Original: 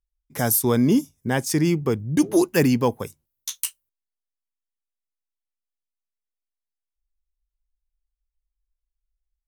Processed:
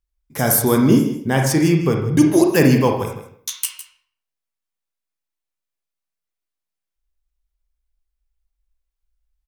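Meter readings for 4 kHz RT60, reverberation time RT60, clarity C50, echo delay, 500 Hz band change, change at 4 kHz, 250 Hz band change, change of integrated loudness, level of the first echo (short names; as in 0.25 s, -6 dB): 0.45 s, 0.60 s, 4.0 dB, 0.158 s, +5.0 dB, +4.5 dB, +5.0 dB, +5.0 dB, -13.0 dB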